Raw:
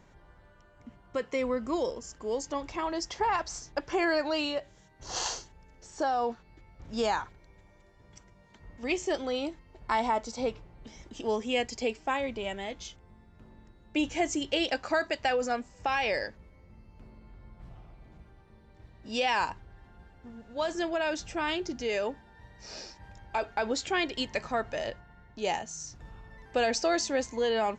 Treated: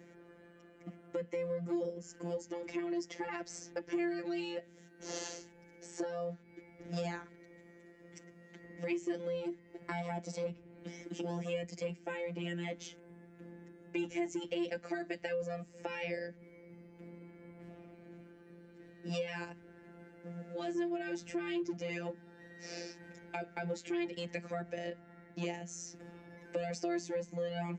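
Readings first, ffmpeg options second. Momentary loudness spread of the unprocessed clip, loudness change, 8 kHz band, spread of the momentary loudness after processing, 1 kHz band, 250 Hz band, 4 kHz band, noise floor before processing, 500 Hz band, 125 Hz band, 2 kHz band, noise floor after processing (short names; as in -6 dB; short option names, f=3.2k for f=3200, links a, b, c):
17 LU, -8.5 dB, -10.0 dB, 19 LU, -15.0 dB, -4.0 dB, -13.5 dB, -58 dBFS, -7.5 dB, +4.0 dB, -10.5 dB, -60 dBFS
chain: -filter_complex "[0:a]equalizer=f=125:t=o:w=1:g=-12,equalizer=f=250:t=o:w=1:g=12,equalizer=f=500:t=o:w=1:g=7,equalizer=f=1k:t=o:w=1:g=-12,equalizer=f=2k:t=o:w=1:g=7,equalizer=f=4k:t=o:w=1:g=-6,acrossover=split=340|1700[a][b][c];[a]asoftclip=type=hard:threshold=-33dB[d];[d][b][c]amix=inputs=3:normalize=0,afftfilt=real='hypot(re,im)*cos(PI*b)':imag='0':win_size=1024:overlap=0.75,acrossover=split=210[e][f];[f]acompressor=threshold=-43dB:ratio=4[g];[e][g]amix=inputs=2:normalize=0,highpass=70,volume=3.5dB"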